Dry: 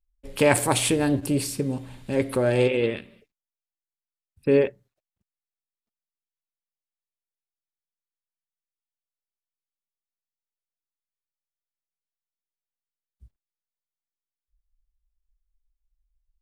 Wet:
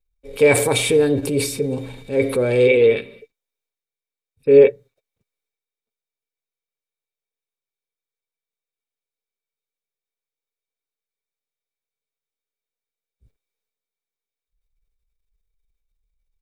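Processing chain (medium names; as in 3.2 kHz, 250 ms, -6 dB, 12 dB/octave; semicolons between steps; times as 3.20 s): comb 7.4 ms, depth 36%; transient shaper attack -5 dB, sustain +6 dB; small resonant body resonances 460/2300/3700 Hz, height 17 dB, ringing for 55 ms; trim -1 dB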